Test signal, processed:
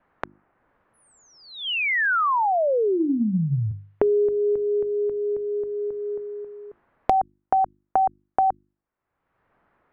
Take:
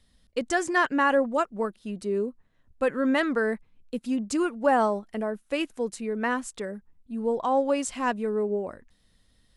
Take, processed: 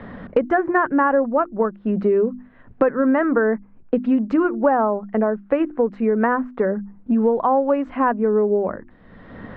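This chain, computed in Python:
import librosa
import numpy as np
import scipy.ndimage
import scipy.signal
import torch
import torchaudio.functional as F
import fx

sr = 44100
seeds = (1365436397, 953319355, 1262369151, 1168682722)

y = scipy.signal.sosfilt(scipy.signal.butter(4, 1600.0, 'lowpass', fs=sr, output='sos'), x)
y = fx.hum_notches(y, sr, base_hz=50, count=7)
y = fx.band_squash(y, sr, depth_pct=100)
y = y * librosa.db_to_amplitude(7.5)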